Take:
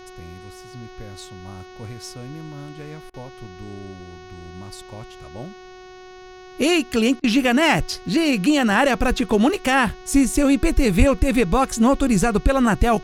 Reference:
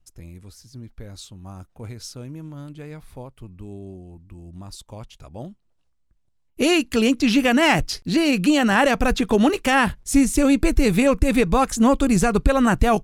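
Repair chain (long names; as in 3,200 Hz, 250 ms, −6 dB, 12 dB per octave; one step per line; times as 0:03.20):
hum removal 368.8 Hz, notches 18
0:10.98–0:11.10: high-pass filter 140 Hz 24 dB per octave
repair the gap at 0:03.10/0:07.20, 38 ms
downward expander −33 dBFS, range −21 dB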